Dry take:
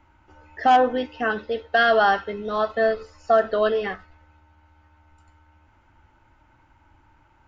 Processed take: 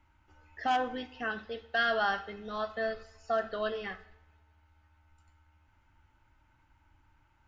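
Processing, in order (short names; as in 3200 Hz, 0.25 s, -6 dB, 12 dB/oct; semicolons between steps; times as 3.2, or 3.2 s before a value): bell 490 Hz -7.5 dB 2.6 oct; two-slope reverb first 0.67 s, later 1.8 s, from -18 dB, DRR 13.5 dB; gain -6.5 dB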